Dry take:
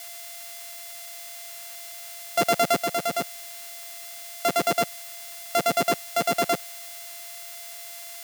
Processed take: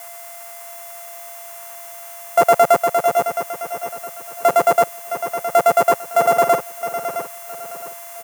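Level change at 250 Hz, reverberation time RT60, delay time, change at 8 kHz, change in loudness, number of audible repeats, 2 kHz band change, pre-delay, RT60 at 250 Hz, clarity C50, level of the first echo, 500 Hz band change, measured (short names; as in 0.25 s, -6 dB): 0.0 dB, none, 0.665 s, +1.5 dB, +10.0 dB, 3, +3.0 dB, none, none, none, -9.5 dB, +10.5 dB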